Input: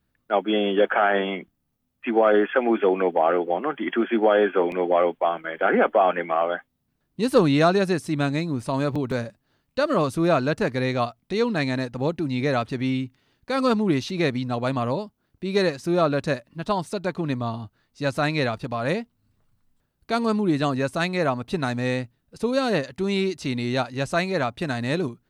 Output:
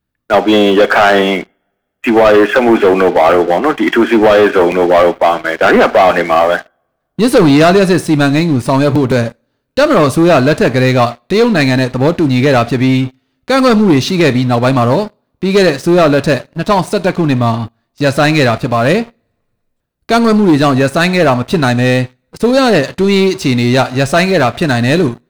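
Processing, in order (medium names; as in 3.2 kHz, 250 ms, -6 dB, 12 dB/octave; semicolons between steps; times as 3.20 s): two-slope reverb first 0.46 s, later 2.3 s, from -27 dB, DRR 14.5 dB; waveshaping leveller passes 3; trim +4.5 dB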